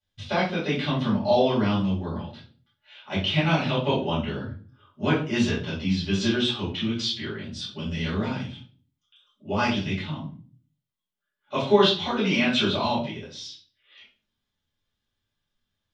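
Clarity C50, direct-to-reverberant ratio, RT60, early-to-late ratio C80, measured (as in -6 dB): 5.5 dB, -9.5 dB, 0.40 s, 11.0 dB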